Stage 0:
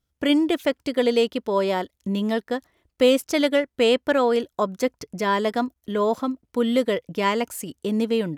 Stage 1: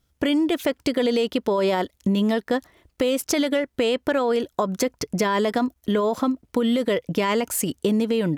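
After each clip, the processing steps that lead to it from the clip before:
brickwall limiter −18 dBFS, peak gain reduction 11 dB
downward compressor, threshold −27 dBFS, peak gain reduction 6.5 dB
level +9 dB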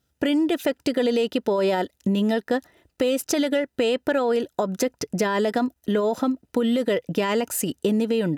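notch comb filter 1,100 Hz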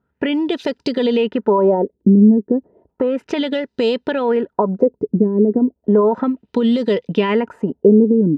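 auto-filter low-pass sine 0.33 Hz 300–4,700 Hz
hollow resonant body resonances 210/410/930 Hz, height 10 dB, ringing for 35 ms
level −1.5 dB

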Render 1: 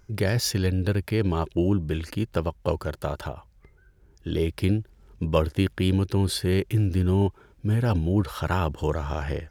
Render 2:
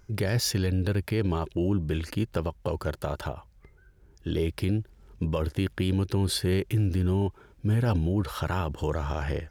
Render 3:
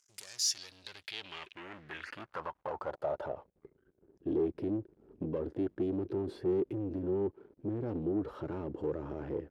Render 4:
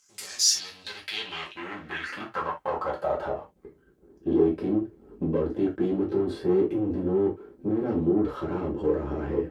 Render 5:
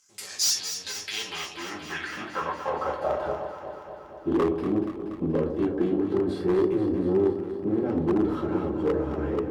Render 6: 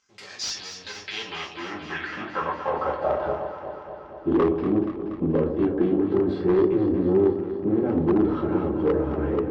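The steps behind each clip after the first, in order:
brickwall limiter −17 dBFS, peak gain reduction 10 dB
leveller curve on the samples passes 3; band-pass filter sweep 7,200 Hz → 350 Hz, 0:00.26–0:03.77; level −4.5 dB
reverb whose tail is shaped and stops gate 100 ms falling, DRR −3.5 dB; level +5 dB
wave folding −17 dBFS; on a send: delay that swaps between a low-pass and a high-pass 119 ms, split 920 Hz, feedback 83%, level −8 dB
high-frequency loss of the air 200 metres; level +3.5 dB

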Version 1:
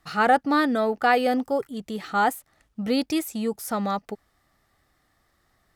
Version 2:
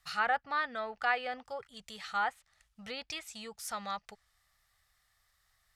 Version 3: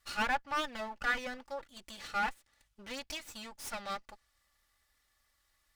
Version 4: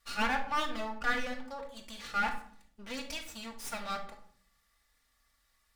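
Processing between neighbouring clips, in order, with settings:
treble cut that deepens with the level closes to 2,400 Hz, closed at −19 dBFS; guitar amp tone stack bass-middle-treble 10-0-10
lower of the sound and its delayed copy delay 3.5 ms
rectangular room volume 870 cubic metres, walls furnished, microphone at 1.7 metres

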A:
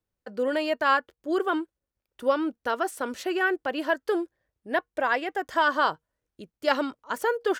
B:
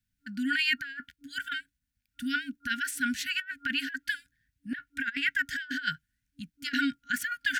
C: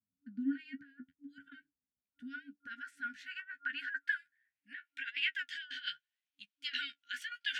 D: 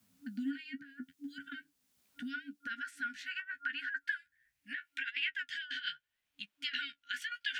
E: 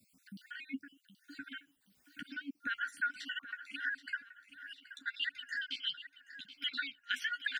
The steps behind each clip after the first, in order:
brick-wall band-stop 290–1,400 Hz; dynamic equaliser 1,800 Hz, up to +7 dB, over −42 dBFS, Q 0.76; compressor whose output falls as the input rises −29 dBFS, ratio −0.5
dynamic equaliser 120 Hz, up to −3 dB, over −44 dBFS, Q 0.75; band-pass filter sweep 280 Hz → 3,000 Hz, 0:01.31–0:05.14; flanger 0.77 Hz, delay 9.4 ms, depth 6.4 ms, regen +26%; level +3 dB
multiband upward and downward compressor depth 70%; level +1.5 dB
time-frequency cells dropped at random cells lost 52%; repeating echo 777 ms, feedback 37%, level −13.5 dB; level +4 dB

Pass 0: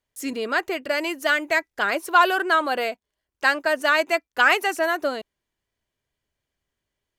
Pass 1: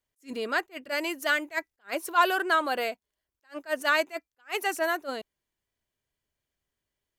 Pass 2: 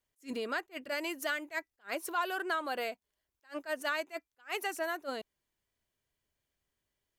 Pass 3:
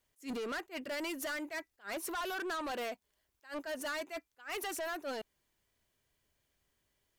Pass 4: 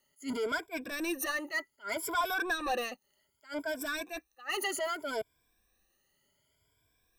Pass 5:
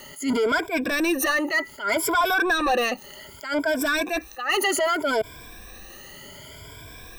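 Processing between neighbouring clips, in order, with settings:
high-shelf EQ 8,500 Hz +6 dB; level that may rise only so fast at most 330 dB per second; level −4.5 dB
downward compressor 2.5 to 1, threshold −35 dBFS, peak gain reduction 12.5 dB
in parallel at −2.5 dB: brickwall limiter −33 dBFS, peak gain reduction 11.5 dB; on the sum: soft clipping −36 dBFS, distortion −7 dB; level +1 dB
rippled gain that drifts along the octave scale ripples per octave 1.7, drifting +0.65 Hz, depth 22 dB
parametric band 12,000 Hz −5.5 dB 1.8 octaves; envelope flattener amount 50%; level +8.5 dB

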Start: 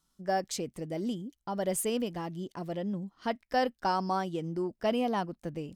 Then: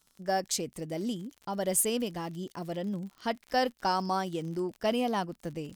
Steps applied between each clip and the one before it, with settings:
high-shelf EQ 3,900 Hz +8 dB
surface crackle 49 per second −40 dBFS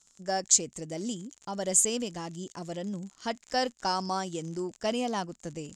low-pass with resonance 7,100 Hz, resonance Q 7.5
level −1.5 dB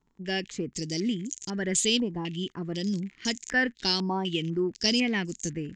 flat-topped bell 870 Hz −15.5 dB
low-pass on a step sequencer 4 Hz 940–6,700 Hz
level +6.5 dB

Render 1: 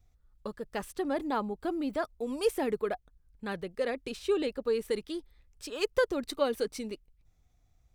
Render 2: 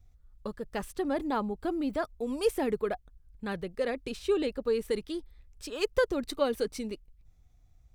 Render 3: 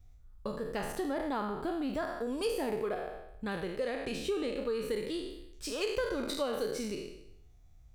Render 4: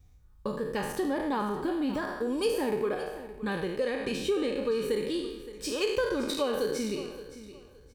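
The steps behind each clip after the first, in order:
low-shelf EQ 150 Hz +7.5 dB
peak hold with a decay on every bin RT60 0.76 s; downward compressor 2.5 to 1, threshold −33 dBFS, peak gain reduction 9.5 dB
notch comb filter 680 Hz; repeating echo 569 ms, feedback 24%, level −15 dB; level +5 dB

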